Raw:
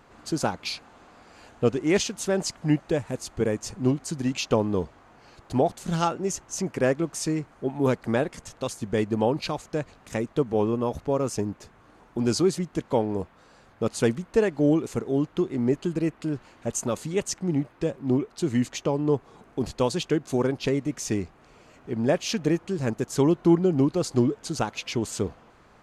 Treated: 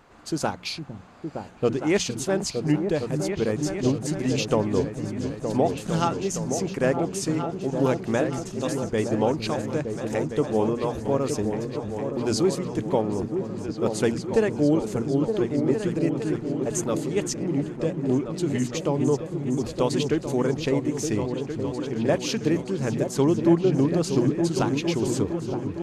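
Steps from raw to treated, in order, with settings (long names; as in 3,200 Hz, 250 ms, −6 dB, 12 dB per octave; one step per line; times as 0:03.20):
mains-hum notches 60/120/180/240 Hz
echo whose low-pass opens from repeat to repeat 459 ms, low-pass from 200 Hz, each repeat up 2 octaves, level −3 dB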